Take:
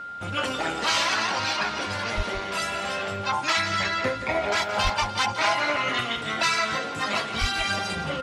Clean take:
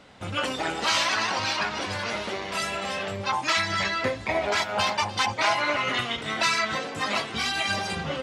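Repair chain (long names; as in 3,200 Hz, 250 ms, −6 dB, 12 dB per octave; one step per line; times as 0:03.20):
notch filter 1,400 Hz, Q 30
high-pass at the plosives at 0:02.16/0:04.83/0:07.40
echo removal 171 ms −11.5 dB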